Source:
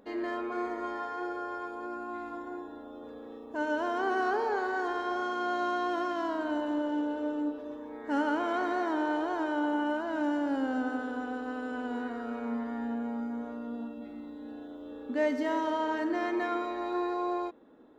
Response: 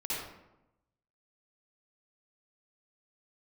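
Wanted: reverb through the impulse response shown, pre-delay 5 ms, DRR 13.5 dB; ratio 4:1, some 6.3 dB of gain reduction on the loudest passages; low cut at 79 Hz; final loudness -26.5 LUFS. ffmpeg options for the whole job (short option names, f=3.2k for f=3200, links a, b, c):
-filter_complex "[0:a]highpass=79,acompressor=threshold=-32dB:ratio=4,asplit=2[a][b];[1:a]atrim=start_sample=2205,adelay=5[c];[b][c]afir=irnorm=-1:irlink=0,volume=-18dB[d];[a][d]amix=inputs=2:normalize=0,volume=9.5dB"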